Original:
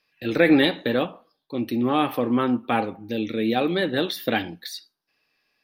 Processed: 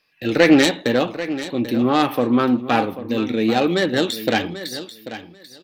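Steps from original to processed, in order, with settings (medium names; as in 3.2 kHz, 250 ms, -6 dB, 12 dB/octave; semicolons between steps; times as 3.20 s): self-modulated delay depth 0.13 ms; on a send: feedback delay 789 ms, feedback 16%, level -13 dB; on the sum: trim +4.5 dB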